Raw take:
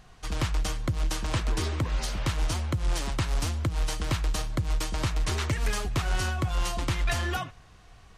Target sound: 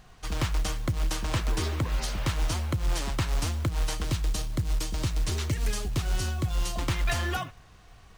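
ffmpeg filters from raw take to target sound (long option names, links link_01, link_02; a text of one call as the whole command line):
ffmpeg -i in.wav -filter_complex "[0:a]asettb=1/sr,asplit=3[link_01][link_02][link_03];[link_01]atrim=end=4.044[link_04];[link_02]atrim=start=4.04:end=6.76,asetpts=PTS-STARTPTS,afade=type=in:duration=0.004:curve=qsin,afade=type=out:start_time=2.716:duration=0.004:curve=qsin,acrossover=split=490|3000[link_05][link_06][link_07];[link_06]acompressor=threshold=-56dB:ratio=1.5[link_08];[link_05][link_08][link_07]amix=inputs=3:normalize=0[link_09];[link_03]atrim=start=6.756[link_10];[link_04][link_09]acrossfade=duration=0.004:curve1=hsin:curve2=qsin[link_11];[link_11][link_10]acrossfade=duration=0.004:curve1=qsin:curve2=hsin,acrusher=bits=6:mode=log:mix=0:aa=0.000001" out.wav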